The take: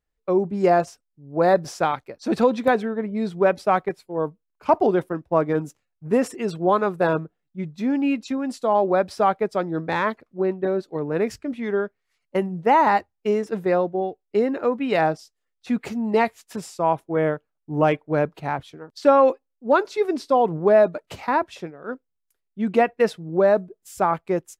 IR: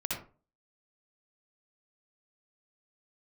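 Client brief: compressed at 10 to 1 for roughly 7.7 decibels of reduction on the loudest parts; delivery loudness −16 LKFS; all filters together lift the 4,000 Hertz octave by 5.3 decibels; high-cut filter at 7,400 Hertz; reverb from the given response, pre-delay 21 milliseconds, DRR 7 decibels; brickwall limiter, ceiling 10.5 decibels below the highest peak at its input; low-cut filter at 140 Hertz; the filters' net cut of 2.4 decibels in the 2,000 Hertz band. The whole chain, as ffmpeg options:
-filter_complex "[0:a]highpass=140,lowpass=7400,equalizer=frequency=2000:width_type=o:gain=-5,equalizer=frequency=4000:width_type=o:gain=8.5,acompressor=threshold=-19dB:ratio=10,alimiter=limit=-21dB:level=0:latency=1,asplit=2[link_01][link_02];[1:a]atrim=start_sample=2205,adelay=21[link_03];[link_02][link_03]afir=irnorm=-1:irlink=0,volume=-11dB[link_04];[link_01][link_04]amix=inputs=2:normalize=0,volume=14.5dB"

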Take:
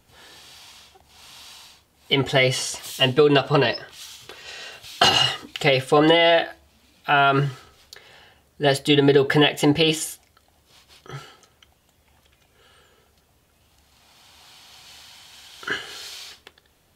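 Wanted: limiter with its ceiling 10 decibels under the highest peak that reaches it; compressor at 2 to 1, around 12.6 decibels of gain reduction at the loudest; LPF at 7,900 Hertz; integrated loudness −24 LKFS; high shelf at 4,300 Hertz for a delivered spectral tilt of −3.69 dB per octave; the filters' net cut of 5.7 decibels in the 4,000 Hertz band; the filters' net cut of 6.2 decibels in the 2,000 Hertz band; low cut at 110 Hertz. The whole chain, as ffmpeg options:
ffmpeg -i in.wav -af "highpass=110,lowpass=7900,equalizer=frequency=2000:width_type=o:gain=-7.5,equalizer=frequency=4000:width_type=o:gain=-8.5,highshelf=frequency=4300:gain=8,acompressor=threshold=-36dB:ratio=2,volume=12.5dB,alimiter=limit=-11.5dB:level=0:latency=1" out.wav

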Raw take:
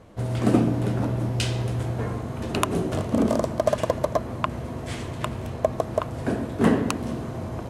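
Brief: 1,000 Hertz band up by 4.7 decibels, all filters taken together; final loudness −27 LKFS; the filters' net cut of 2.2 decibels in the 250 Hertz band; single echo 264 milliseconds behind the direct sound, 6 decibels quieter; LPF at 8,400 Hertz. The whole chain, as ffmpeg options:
ffmpeg -i in.wav -af "lowpass=8400,equalizer=frequency=250:width_type=o:gain=-3,equalizer=frequency=1000:width_type=o:gain=6,aecho=1:1:264:0.501,volume=-2dB" out.wav

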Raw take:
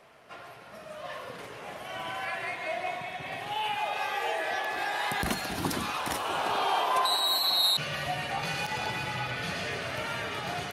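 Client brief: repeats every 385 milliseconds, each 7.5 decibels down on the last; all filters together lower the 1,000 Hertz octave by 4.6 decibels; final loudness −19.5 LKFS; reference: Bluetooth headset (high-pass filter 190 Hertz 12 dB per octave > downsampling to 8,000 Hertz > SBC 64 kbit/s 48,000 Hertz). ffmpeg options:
ffmpeg -i in.wav -af "highpass=190,equalizer=frequency=1000:width_type=o:gain=-6,aecho=1:1:385|770|1155|1540|1925:0.422|0.177|0.0744|0.0312|0.0131,aresample=8000,aresample=44100,volume=13.5dB" -ar 48000 -c:a sbc -b:a 64k out.sbc

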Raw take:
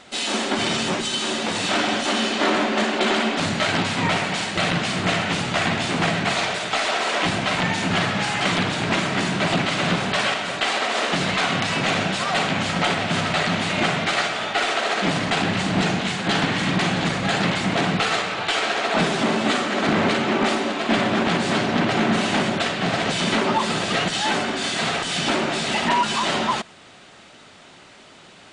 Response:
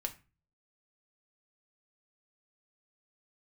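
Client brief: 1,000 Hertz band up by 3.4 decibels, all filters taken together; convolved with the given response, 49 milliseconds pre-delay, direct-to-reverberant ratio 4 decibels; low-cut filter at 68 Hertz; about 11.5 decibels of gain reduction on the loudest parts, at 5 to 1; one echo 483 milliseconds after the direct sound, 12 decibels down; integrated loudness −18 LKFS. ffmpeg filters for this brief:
-filter_complex "[0:a]highpass=68,equalizer=frequency=1000:width_type=o:gain=4.5,acompressor=threshold=-26dB:ratio=5,aecho=1:1:483:0.251,asplit=2[link_01][link_02];[1:a]atrim=start_sample=2205,adelay=49[link_03];[link_02][link_03]afir=irnorm=-1:irlink=0,volume=-4dB[link_04];[link_01][link_04]amix=inputs=2:normalize=0,volume=8dB"

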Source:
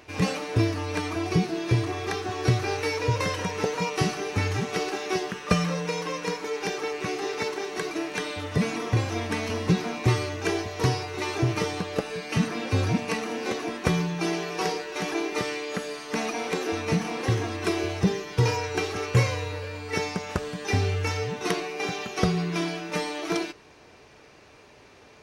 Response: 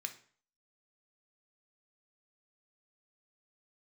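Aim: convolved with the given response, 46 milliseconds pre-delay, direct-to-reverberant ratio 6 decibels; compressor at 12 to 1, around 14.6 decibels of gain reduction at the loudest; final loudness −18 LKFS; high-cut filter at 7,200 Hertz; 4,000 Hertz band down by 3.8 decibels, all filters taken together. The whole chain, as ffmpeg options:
-filter_complex "[0:a]lowpass=7200,equalizer=frequency=4000:width_type=o:gain=-4.5,acompressor=threshold=-33dB:ratio=12,asplit=2[link_01][link_02];[1:a]atrim=start_sample=2205,adelay=46[link_03];[link_02][link_03]afir=irnorm=-1:irlink=0,volume=-4.5dB[link_04];[link_01][link_04]amix=inputs=2:normalize=0,volume=19dB"

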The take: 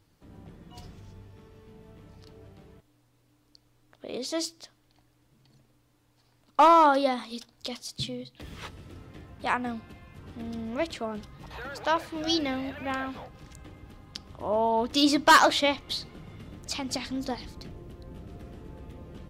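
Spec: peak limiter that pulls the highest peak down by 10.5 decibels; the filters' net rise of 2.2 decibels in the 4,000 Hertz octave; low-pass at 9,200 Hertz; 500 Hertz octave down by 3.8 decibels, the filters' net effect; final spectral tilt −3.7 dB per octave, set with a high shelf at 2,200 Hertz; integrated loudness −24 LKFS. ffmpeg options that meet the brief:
ffmpeg -i in.wav -af "lowpass=9200,equalizer=frequency=500:width_type=o:gain=-5,highshelf=frequency=2200:gain=-4,equalizer=frequency=4000:width_type=o:gain=6.5,volume=8dB,alimiter=limit=-10.5dB:level=0:latency=1" out.wav

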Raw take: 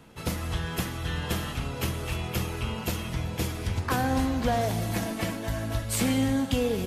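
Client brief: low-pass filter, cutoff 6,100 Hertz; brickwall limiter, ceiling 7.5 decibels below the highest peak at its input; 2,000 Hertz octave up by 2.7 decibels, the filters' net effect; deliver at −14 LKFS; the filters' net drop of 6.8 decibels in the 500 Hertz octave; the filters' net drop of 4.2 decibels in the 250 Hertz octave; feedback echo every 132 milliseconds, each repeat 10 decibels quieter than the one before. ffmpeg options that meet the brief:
ffmpeg -i in.wav -af "lowpass=6100,equalizer=frequency=250:width_type=o:gain=-3,equalizer=frequency=500:width_type=o:gain=-8,equalizer=frequency=2000:width_type=o:gain=4,alimiter=limit=-21.5dB:level=0:latency=1,aecho=1:1:132|264|396|528:0.316|0.101|0.0324|0.0104,volume=18dB" out.wav

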